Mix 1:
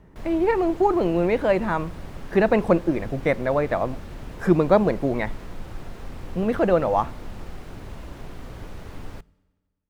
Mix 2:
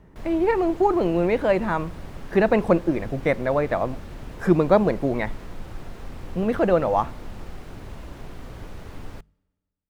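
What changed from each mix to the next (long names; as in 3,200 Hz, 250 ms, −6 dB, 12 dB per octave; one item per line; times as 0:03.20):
background: send −7.0 dB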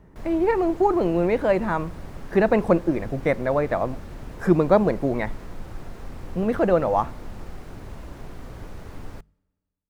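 master: add parametric band 3,100 Hz −3.5 dB 0.99 octaves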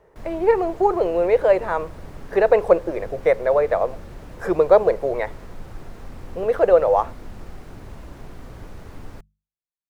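speech: add low shelf with overshoot 340 Hz −10.5 dB, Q 3
background: send off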